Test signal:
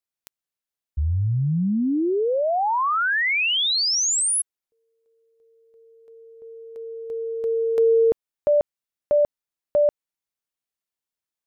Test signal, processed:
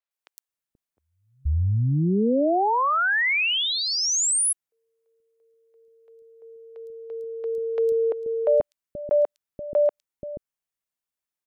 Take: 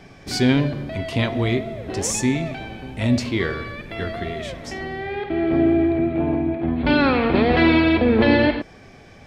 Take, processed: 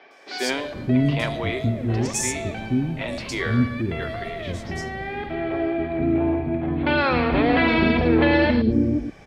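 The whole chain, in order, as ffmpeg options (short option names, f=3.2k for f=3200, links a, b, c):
-filter_complex "[0:a]acrossover=split=380|4200[a][b][c];[c]adelay=110[d];[a]adelay=480[e];[e][b][d]amix=inputs=3:normalize=0"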